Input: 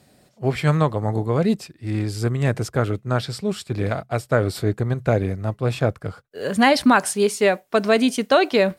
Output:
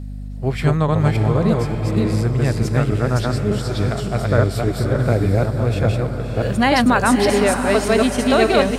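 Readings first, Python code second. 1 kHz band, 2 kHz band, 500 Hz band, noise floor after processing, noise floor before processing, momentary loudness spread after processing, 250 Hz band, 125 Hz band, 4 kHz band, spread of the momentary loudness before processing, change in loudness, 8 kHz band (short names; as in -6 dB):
+2.0 dB, +2.0 dB, +2.0 dB, -28 dBFS, -59 dBFS, 7 LU, +3.5 dB, +5.5 dB, +2.0 dB, 9 LU, +3.0 dB, +2.0 dB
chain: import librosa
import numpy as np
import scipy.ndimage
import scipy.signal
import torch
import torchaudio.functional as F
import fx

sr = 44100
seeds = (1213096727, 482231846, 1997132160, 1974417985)

p1 = fx.reverse_delay(x, sr, ms=292, wet_db=-0.5)
p2 = fx.low_shelf(p1, sr, hz=110.0, db=7.5)
p3 = p2 + fx.echo_diffused(p2, sr, ms=589, feedback_pct=42, wet_db=-7.0, dry=0)
p4 = fx.add_hum(p3, sr, base_hz=50, snr_db=12)
y = F.gain(torch.from_numpy(p4), -1.5).numpy()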